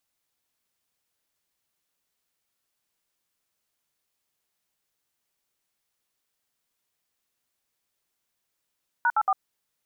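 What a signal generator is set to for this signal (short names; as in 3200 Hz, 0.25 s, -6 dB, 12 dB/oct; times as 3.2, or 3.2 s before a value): DTMF "#84", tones 51 ms, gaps 63 ms, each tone -21.5 dBFS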